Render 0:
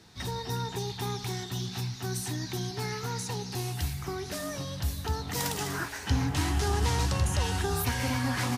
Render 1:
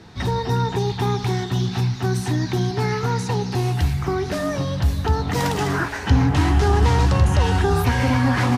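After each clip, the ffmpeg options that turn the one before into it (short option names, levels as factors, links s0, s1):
-filter_complex "[0:a]lowpass=f=1700:p=1,asplit=2[s0][s1];[s1]alimiter=level_in=1.26:limit=0.0631:level=0:latency=1,volume=0.794,volume=0.708[s2];[s0][s2]amix=inputs=2:normalize=0,volume=2.66"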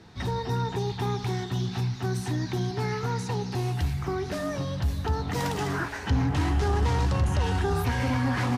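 -af "asoftclip=type=tanh:threshold=0.355,volume=0.473"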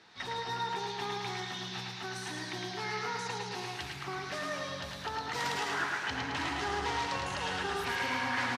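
-filter_complex "[0:a]bandpass=f=2600:t=q:w=0.55:csg=0,asplit=2[s0][s1];[s1]aecho=0:1:108|216|324|432|540|648|756|864:0.668|0.388|0.225|0.13|0.0756|0.0439|0.0254|0.0148[s2];[s0][s2]amix=inputs=2:normalize=0"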